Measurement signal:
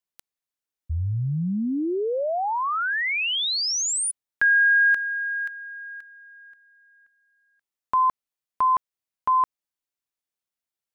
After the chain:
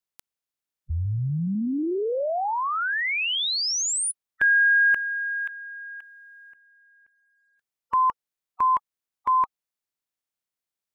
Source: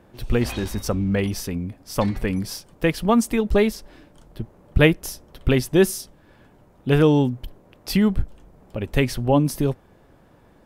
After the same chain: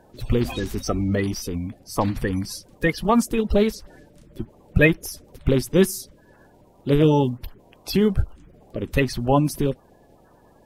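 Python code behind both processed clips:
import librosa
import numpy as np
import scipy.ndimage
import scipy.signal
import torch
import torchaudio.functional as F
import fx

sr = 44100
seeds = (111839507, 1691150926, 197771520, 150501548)

y = fx.spec_quant(x, sr, step_db=30)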